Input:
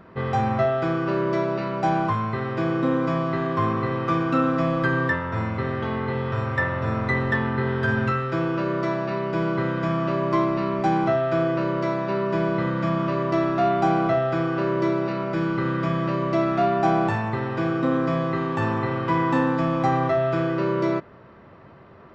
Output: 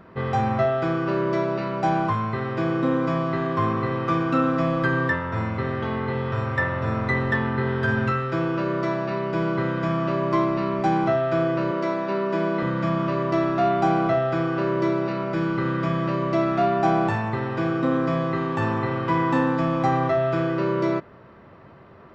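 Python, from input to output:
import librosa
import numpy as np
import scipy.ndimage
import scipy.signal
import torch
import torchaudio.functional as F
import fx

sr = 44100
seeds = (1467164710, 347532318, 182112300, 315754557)

y = fx.steep_highpass(x, sr, hz=170.0, slope=36, at=(11.71, 12.63))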